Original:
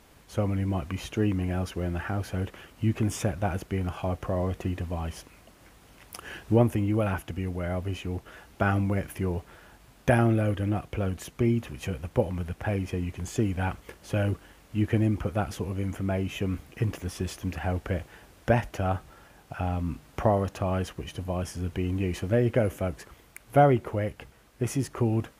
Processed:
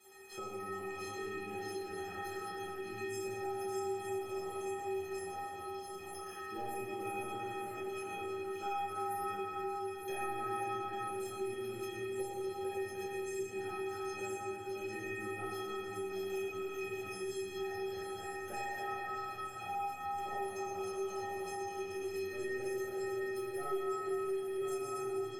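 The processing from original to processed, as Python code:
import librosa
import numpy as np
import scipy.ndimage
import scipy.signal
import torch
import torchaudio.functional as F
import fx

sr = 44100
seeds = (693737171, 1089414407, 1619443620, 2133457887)

y = fx.reverse_delay(x, sr, ms=690, wet_db=-4.5)
y = scipy.signal.sosfilt(scipy.signal.butter(2, 130.0, 'highpass', fs=sr, output='sos'), y)
y = fx.high_shelf(y, sr, hz=3400.0, db=9.0)
y = fx.leveller(y, sr, passes=1)
y = fx.stiff_resonator(y, sr, f0_hz=380.0, decay_s=0.69, stiffness=0.03)
y = fx.echo_stepped(y, sr, ms=303, hz=1400.0, octaves=1.4, feedback_pct=70, wet_db=-1.5)
y = fx.room_shoebox(y, sr, seeds[0], volume_m3=140.0, walls='hard', distance_m=1.1)
y = fx.band_squash(y, sr, depth_pct=70)
y = y * librosa.db_to_amplitude(-5.0)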